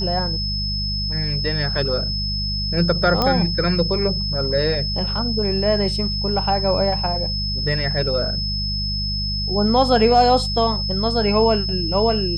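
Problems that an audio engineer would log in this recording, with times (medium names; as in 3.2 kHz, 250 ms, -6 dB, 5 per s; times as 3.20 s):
hum 50 Hz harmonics 4 -26 dBFS
whine 5.2 kHz -24 dBFS
3.22 s: pop -6 dBFS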